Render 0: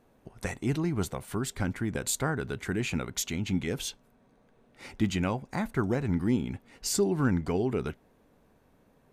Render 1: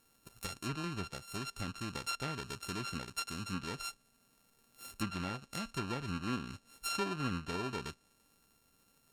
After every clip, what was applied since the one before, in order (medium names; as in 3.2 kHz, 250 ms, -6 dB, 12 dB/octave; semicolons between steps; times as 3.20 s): sorted samples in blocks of 32 samples; low-pass that closes with the level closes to 2.8 kHz, closed at -23.5 dBFS; pre-emphasis filter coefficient 0.8; trim +3 dB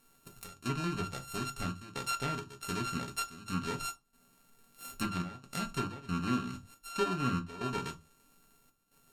trance gate "xx.xxxxx.xx.xxx." 69 bpm -12 dB; on a send at -3 dB: reverberation RT60 0.25 s, pre-delay 4 ms; on the sum: trim +1.5 dB